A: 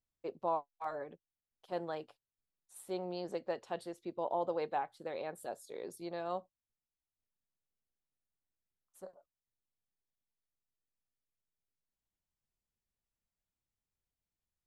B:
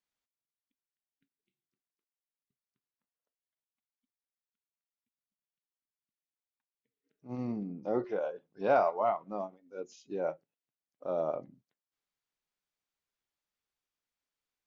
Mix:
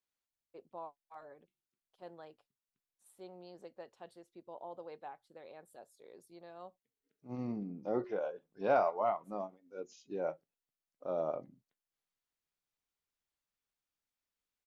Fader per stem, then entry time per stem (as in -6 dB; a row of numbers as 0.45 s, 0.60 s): -12.0 dB, -3.0 dB; 0.30 s, 0.00 s